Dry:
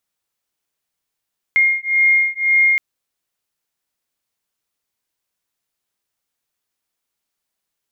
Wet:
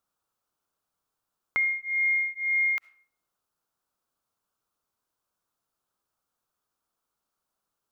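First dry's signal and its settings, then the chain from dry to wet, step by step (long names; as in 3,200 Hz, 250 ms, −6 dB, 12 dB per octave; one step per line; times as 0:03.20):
two tones that beat 2,130 Hz, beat 1.9 Hz, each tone −15.5 dBFS 1.22 s
high shelf with overshoot 1,600 Hz −6 dB, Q 3
comb and all-pass reverb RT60 0.54 s, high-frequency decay 0.7×, pre-delay 25 ms, DRR 18.5 dB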